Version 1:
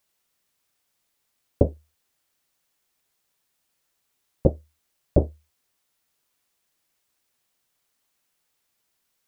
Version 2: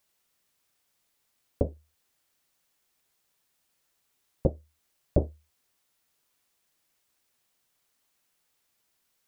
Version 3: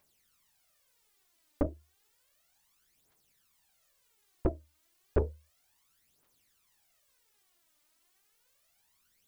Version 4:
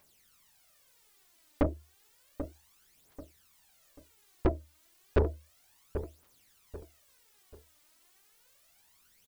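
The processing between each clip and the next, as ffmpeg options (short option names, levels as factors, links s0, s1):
-af "alimiter=limit=0.316:level=0:latency=1:release=360"
-af "aphaser=in_gain=1:out_gain=1:delay=3.4:decay=0.67:speed=0.32:type=triangular,asoftclip=type=tanh:threshold=0.106"
-af "aecho=1:1:788|1576|2364:0.2|0.0658|0.0217,asoftclip=type=tanh:threshold=0.0531,volume=2.11"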